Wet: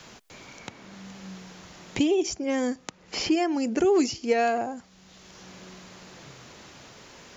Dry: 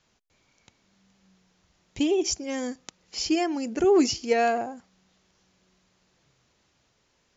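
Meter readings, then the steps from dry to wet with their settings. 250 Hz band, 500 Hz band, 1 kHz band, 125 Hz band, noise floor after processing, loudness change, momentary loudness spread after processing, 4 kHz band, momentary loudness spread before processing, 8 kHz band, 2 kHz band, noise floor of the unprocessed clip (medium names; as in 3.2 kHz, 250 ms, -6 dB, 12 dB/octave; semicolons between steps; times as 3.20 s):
+1.0 dB, -0.5 dB, 0.0 dB, +5.0 dB, -56 dBFS, -0.5 dB, 22 LU, -1.0 dB, 15 LU, no reading, +1.0 dB, -70 dBFS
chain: three bands compressed up and down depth 70%; trim +1 dB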